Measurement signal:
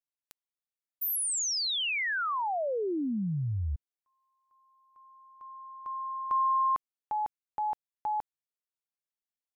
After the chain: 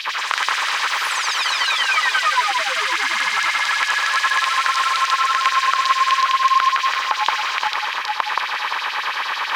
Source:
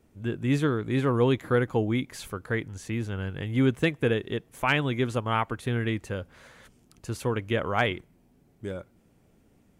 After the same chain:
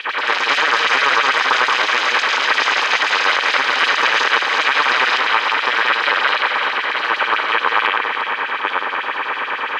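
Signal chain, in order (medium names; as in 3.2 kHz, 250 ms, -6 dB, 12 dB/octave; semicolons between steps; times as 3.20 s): spectral levelling over time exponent 0.2; dynamic bell 1.7 kHz, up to -3 dB, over -28 dBFS, Q 1.3; reverse; upward compressor, threshold -21 dBFS; reverse; distance through air 330 m; comb of notches 700 Hz; LFO high-pass sine 9.1 Hz 970–4900 Hz; ever faster or slower copies 91 ms, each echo +4 st, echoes 3; echo whose repeats swap between lows and highs 174 ms, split 2.2 kHz, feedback 71%, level -5 dB; loudness maximiser +10 dB; trim -2 dB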